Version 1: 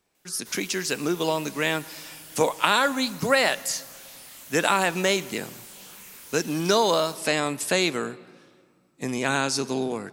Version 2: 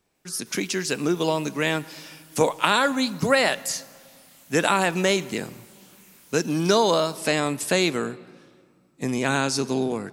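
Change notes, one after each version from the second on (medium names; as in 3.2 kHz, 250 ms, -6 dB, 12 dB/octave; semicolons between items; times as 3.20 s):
speech: add bass shelf 360 Hz +5 dB; background -8.0 dB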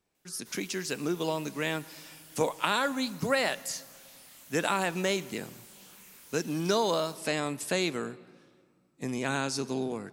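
speech -7.5 dB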